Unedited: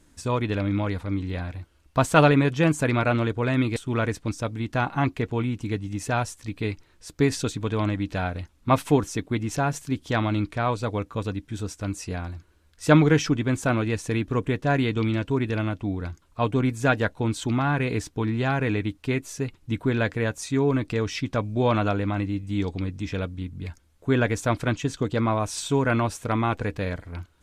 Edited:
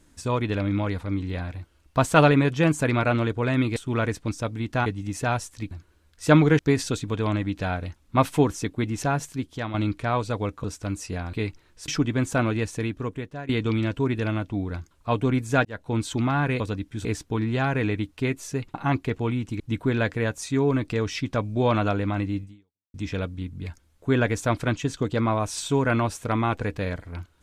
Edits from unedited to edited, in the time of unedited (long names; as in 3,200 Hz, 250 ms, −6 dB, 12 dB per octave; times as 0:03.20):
0:04.86–0:05.72: move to 0:19.60
0:06.57–0:07.12: swap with 0:12.31–0:13.19
0:09.70–0:10.27: fade out, to −9.5 dB
0:11.17–0:11.62: move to 0:17.91
0:13.89–0:14.80: fade out, to −18 dB
0:16.96–0:17.27: fade in
0:22.43–0:22.94: fade out exponential